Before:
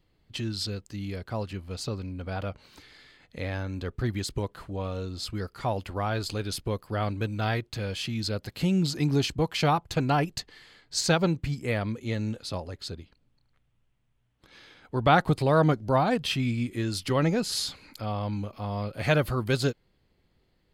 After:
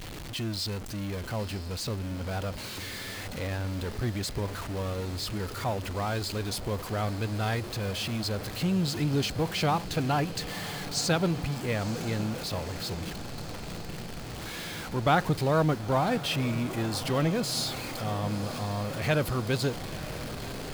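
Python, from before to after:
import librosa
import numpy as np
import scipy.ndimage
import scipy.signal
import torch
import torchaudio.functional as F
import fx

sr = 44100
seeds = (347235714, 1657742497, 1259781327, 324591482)

p1 = x + 0.5 * 10.0 ** (-30.0 / 20.0) * np.sign(x)
p2 = p1 + fx.echo_diffused(p1, sr, ms=987, feedback_pct=77, wet_db=-13.5, dry=0)
y = p2 * librosa.db_to_amplitude(-4.0)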